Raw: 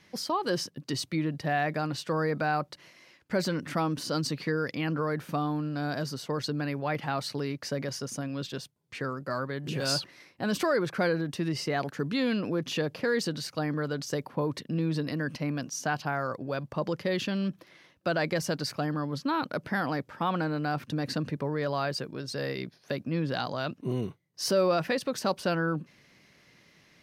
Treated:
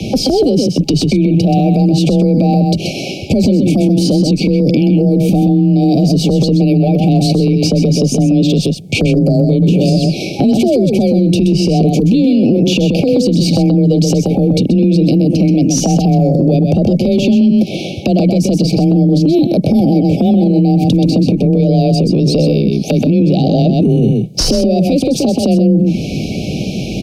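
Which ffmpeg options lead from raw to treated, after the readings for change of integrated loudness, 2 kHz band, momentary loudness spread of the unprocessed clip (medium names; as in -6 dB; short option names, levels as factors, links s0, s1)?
+19.5 dB, +4.0 dB, 7 LU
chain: -filter_complex "[0:a]acrossover=split=210|590|4100[s0][s1][s2][s3];[s0]acompressor=threshold=0.0141:ratio=4[s4];[s1]acompressor=threshold=0.0141:ratio=4[s5];[s2]acompressor=threshold=0.00708:ratio=4[s6];[s3]acompressor=threshold=0.00562:ratio=4[s7];[s4][s5][s6][s7]amix=inputs=4:normalize=0,afftfilt=real='re*(1-between(b*sr/4096,790,2200))':imag='im*(1-between(b*sr/4096,790,2200))':win_size=4096:overlap=0.75,equalizer=f=330:w=0.49:g=5,acompressor=threshold=0.00891:ratio=12,crystalizer=i=3:c=0,aeval=exprs='clip(val(0),-1,0.0282)':c=same,aemphasis=mode=reproduction:type=riaa,afreqshift=22,asplit=2[s8][s9];[s9]aecho=0:1:128:0.473[s10];[s8][s10]amix=inputs=2:normalize=0,alimiter=level_in=59.6:limit=0.891:release=50:level=0:latency=1,volume=0.708" -ar 48000 -c:a libopus -b:a 96k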